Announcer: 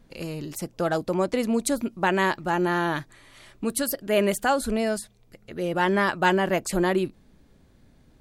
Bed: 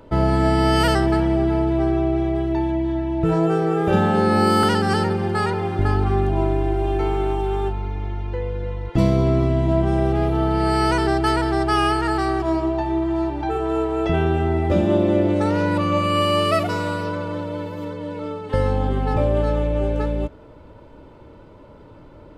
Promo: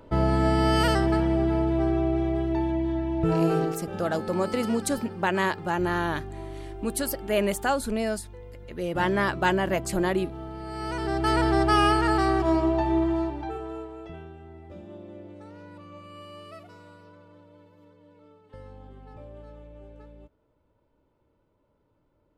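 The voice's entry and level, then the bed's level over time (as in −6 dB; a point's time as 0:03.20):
3.20 s, −2.5 dB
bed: 0:03.63 −4.5 dB
0:03.84 −18 dB
0:10.66 −18 dB
0:11.42 −1.5 dB
0:13.03 −1.5 dB
0:14.35 −25.5 dB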